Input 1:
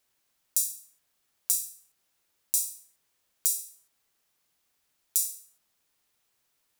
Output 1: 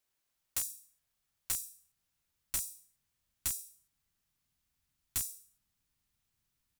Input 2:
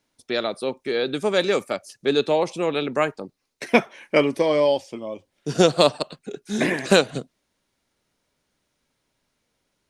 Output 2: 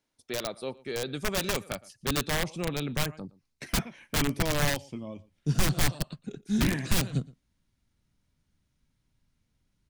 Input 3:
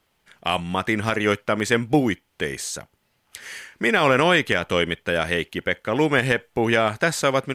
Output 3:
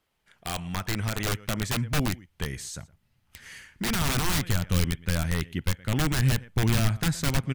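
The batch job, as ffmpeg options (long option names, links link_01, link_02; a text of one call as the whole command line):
ffmpeg -i in.wav -filter_complex "[0:a]asplit=2[link_01][link_02];[link_02]adelay=116.6,volume=-22dB,highshelf=frequency=4000:gain=-2.62[link_03];[link_01][link_03]amix=inputs=2:normalize=0,aeval=exprs='(mod(4.73*val(0)+1,2)-1)/4.73':channel_layout=same,asubboost=boost=9:cutoff=160,volume=-8dB" out.wav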